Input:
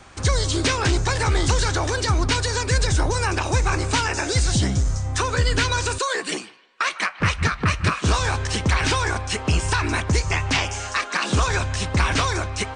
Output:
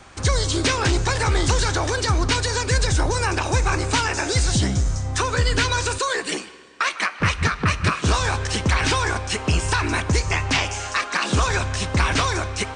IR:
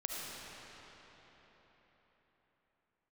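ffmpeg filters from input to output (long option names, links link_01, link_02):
-filter_complex "[0:a]asplit=2[link_01][link_02];[link_02]highpass=140[link_03];[1:a]atrim=start_sample=2205,asetrate=83790,aresample=44100[link_04];[link_03][link_04]afir=irnorm=-1:irlink=0,volume=-12.5dB[link_05];[link_01][link_05]amix=inputs=2:normalize=0"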